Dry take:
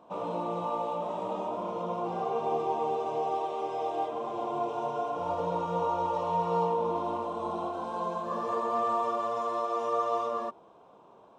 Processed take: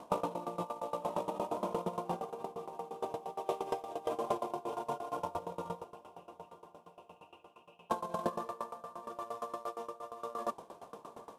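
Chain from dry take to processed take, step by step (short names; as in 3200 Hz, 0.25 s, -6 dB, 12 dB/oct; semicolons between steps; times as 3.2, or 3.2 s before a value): CVSD 64 kbps; negative-ratio compressor -36 dBFS, ratio -0.5; 5.84–7.9 Butterworth band-pass 2700 Hz, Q 7.6; diffused feedback echo 0.823 s, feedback 61%, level -15.5 dB; dB-ramp tremolo decaying 8.6 Hz, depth 20 dB; gain +4.5 dB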